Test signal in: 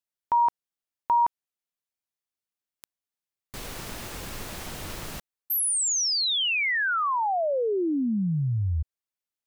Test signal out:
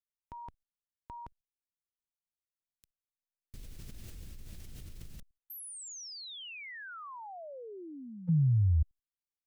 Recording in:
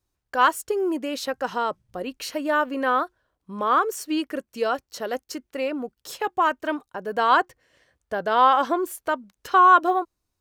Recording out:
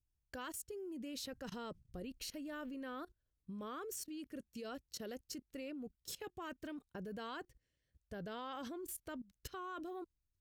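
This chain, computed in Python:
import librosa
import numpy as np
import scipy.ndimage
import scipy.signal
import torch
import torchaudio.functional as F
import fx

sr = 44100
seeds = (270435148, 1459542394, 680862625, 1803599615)

y = fx.tone_stack(x, sr, knobs='10-0-1')
y = fx.level_steps(y, sr, step_db=20)
y = y * 10.0 ** (15.0 / 20.0)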